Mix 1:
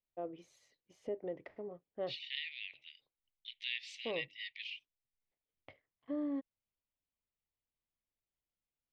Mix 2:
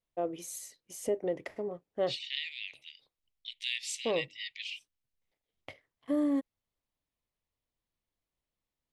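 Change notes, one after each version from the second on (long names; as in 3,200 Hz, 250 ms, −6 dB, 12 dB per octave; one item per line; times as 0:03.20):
first voice +8.0 dB
master: remove high-frequency loss of the air 250 metres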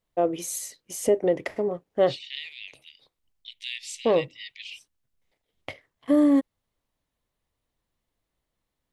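first voice +10.0 dB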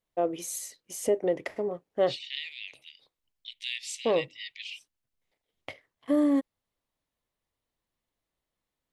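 first voice −3.5 dB
master: add low-shelf EQ 170 Hz −5.5 dB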